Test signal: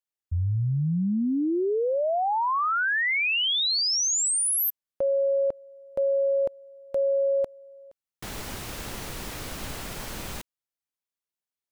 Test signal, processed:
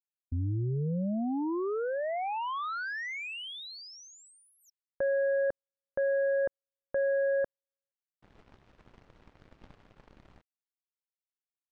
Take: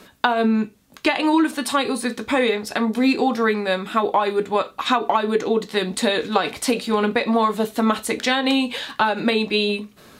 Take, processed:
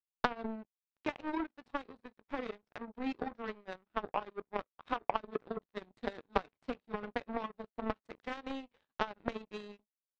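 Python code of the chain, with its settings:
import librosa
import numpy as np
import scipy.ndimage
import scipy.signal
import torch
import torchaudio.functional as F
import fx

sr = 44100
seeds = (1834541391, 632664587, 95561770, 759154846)

y = fx.power_curve(x, sr, exponent=3.0)
y = fx.spacing_loss(y, sr, db_at_10k=35)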